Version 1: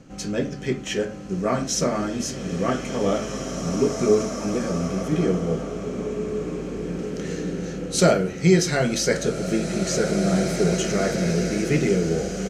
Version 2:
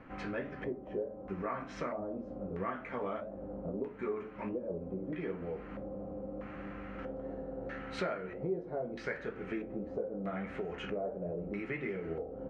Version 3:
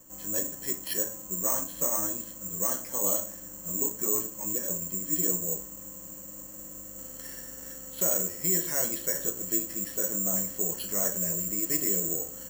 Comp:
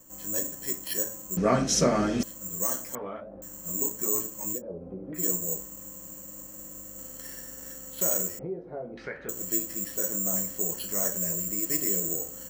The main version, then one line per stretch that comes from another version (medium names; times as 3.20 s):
3
1.37–2.23 s: from 1
2.95–3.42 s: from 2
4.57–5.19 s: from 2, crossfade 0.10 s
8.39–9.29 s: from 2